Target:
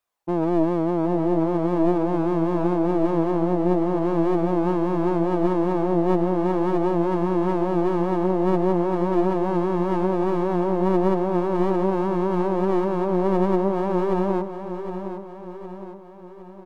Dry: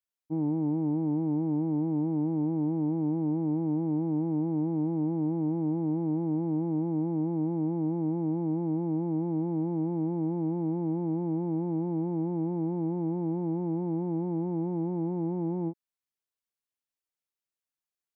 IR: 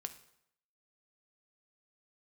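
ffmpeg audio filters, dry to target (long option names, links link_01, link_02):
-filter_complex "[0:a]equalizer=frequency=710:width=0.69:gain=14,acontrast=34,asplit=2[link_01][link_02];[link_02]alimiter=limit=-17.5dB:level=0:latency=1,volume=2.5dB[link_03];[link_01][link_03]amix=inputs=2:normalize=0,asetrate=48069,aresample=44100,flanger=delay=0.8:depth=4.6:regen=71:speed=0.41:shape=sinusoidal,aeval=exprs='clip(val(0),-1,0.0596)':channel_layout=same,asplit=2[link_04][link_05];[link_05]aecho=0:1:762|1524|2286|3048|3810|4572:0.335|0.171|0.0871|0.0444|0.0227|0.0116[link_06];[link_04][link_06]amix=inputs=2:normalize=0,volume=-1.5dB"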